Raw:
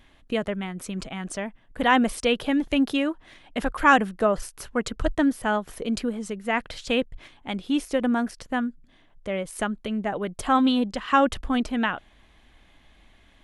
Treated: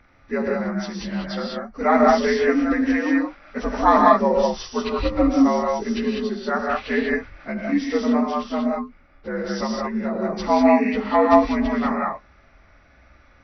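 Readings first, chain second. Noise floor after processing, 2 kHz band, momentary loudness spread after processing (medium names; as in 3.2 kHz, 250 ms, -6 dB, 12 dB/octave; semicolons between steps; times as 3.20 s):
-54 dBFS, +0.5 dB, 13 LU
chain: frequency axis rescaled in octaves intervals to 83%; brick-wall FIR low-pass 6.2 kHz; gated-style reverb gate 220 ms rising, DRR -1.5 dB; trim +2.5 dB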